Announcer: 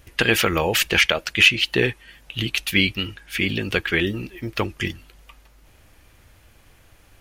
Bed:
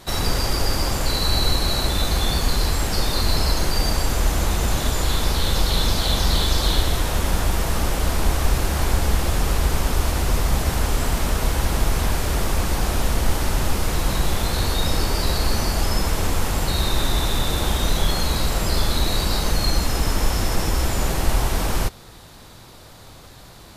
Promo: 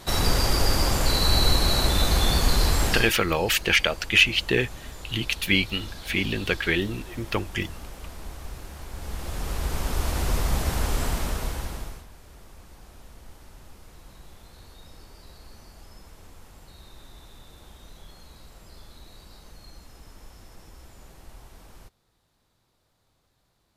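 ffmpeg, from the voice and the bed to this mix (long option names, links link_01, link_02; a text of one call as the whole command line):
ffmpeg -i stem1.wav -i stem2.wav -filter_complex "[0:a]adelay=2750,volume=-3dB[link_01];[1:a]volume=14dB,afade=type=out:start_time=2.89:duration=0.24:silence=0.11885,afade=type=in:start_time=8.91:duration=1.33:silence=0.188365,afade=type=out:start_time=11.04:duration=1.01:silence=0.0749894[link_02];[link_01][link_02]amix=inputs=2:normalize=0" out.wav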